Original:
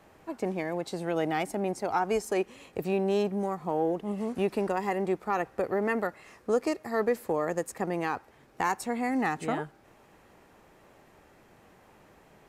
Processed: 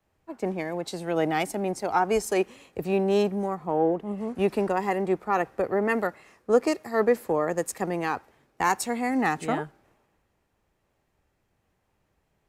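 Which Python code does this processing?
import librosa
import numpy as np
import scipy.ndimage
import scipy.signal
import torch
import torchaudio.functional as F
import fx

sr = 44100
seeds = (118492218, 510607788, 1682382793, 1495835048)

y = fx.band_widen(x, sr, depth_pct=70)
y = y * librosa.db_to_amplitude(3.5)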